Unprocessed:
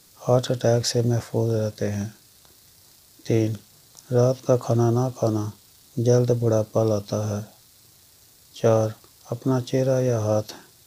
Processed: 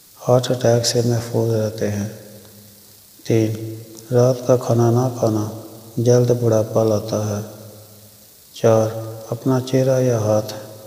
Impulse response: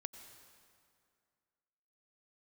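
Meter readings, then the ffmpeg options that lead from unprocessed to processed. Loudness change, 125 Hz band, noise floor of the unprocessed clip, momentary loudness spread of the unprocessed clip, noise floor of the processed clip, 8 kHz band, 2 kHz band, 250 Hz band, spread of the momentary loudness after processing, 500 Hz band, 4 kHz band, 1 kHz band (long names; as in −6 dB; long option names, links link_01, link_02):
+4.5 dB, +3.5 dB, −54 dBFS, 10 LU, −47 dBFS, +6.0 dB, +5.0 dB, +5.0 dB, 14 LU, +5.0 dB, +5.5 dB, +5.0 dB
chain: -filter_complex "[0:a]asplit=2[link_01][link_02];[1:a]atrim=start_sample=2205,lowshelf=frequency=69:gain=-9,highshelf=frequency=10000:gain=8[link_03];[link_02][link_03]afir=irnorm=-1:irlink=0,volume=5dB[link_04];[link_01][link_04]amix=inputs=2:normalize=0,volume=-1.5dB"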